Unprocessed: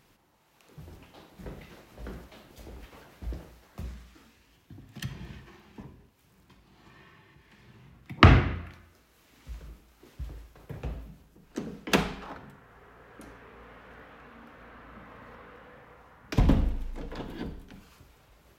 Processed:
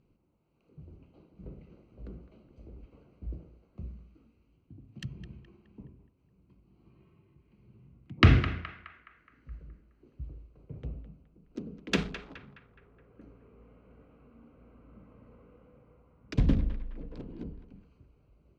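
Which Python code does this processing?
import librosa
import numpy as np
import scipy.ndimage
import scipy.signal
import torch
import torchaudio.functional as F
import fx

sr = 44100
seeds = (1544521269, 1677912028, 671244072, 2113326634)

y = fx.wiener(x, sr, points=25)
y = scipy.signal.sosfilt(scipy.signal.butter(2, 5900.0, 'lowpass', fs=sr, output='sos'), y)
y = fx.peak_eq(y, sr, hz=840.0, db=-12.0, octaves=1.1)
y = fx.echo_banded(y, sr, ms=210, feedback_pct=51, hz=1500.0, wet_db=-10)
y = y * librosa.db_to_amplitude(-2.0)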